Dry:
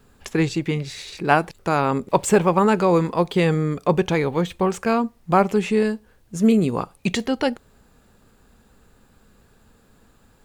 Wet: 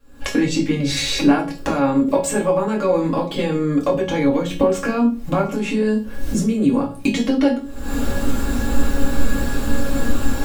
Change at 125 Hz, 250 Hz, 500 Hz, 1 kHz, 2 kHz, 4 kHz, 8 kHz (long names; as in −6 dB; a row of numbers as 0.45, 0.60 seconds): 0.0, +4.0, +1.0, −3.0, +0.5, +6.0, +5.0 decibels